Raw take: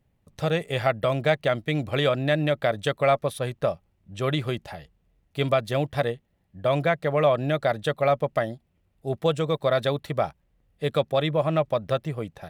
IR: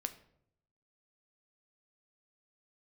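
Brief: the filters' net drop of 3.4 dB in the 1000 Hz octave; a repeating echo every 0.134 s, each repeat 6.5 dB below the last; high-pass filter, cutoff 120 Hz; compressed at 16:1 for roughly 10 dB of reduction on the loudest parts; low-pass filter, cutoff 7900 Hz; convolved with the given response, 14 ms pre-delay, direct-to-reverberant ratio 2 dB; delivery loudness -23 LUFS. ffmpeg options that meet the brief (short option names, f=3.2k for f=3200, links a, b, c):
-filter_complex "[0:a]highpass=120,lowpass=7.9k,equalizer=f=1k:t=o:g=-5.5,acompressor=threshold=-28dB:ratio=16,aecho=1:1:134|268|402|536|670|804:0.473|0.222|0.105|0.0491|0.0231|0.0109,asplit=2[a][b];[1:a]atrim=start_sample=2205,adelay=14[c];[b][c]afir=irnorm=-1:irlink=0,volume=-1dB[d];[a][d]amix=inputs=2:normalize=0,volume=8.5dB"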